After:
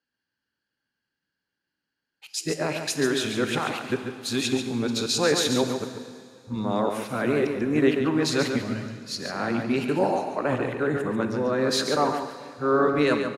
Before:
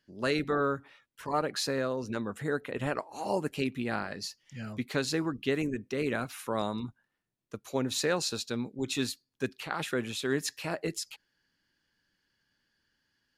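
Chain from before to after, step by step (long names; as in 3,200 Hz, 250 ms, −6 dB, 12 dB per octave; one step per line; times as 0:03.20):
played backwards from end to start
high-pass filter 360 Hz 6 dB per octave
spectral tilt −2 dB per octave
in parallel at +3 dB: brickwall limiter −28 dBFS, peak gain reduction 10 dB
on the sum: pitch shifter −0.5 semitones
single-tap delay 141 ms −6.5 dB
on a send at −7.5 dB: convolution reverb RT60 3.3 s, pre-delay 13 ms
on the sum: multiband upward and downward expander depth 40%
level +2 dB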